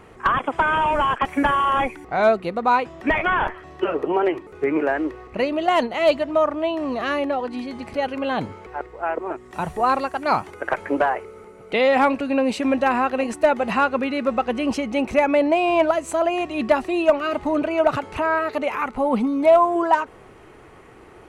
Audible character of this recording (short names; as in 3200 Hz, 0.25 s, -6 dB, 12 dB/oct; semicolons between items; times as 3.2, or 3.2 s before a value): noise floor -46 dBFS; spectral tilt -3.0 dB/oct